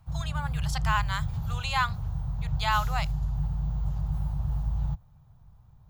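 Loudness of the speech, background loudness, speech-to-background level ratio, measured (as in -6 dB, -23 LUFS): -31.0 LUFS, -32.0 LUFS, 1.0 dB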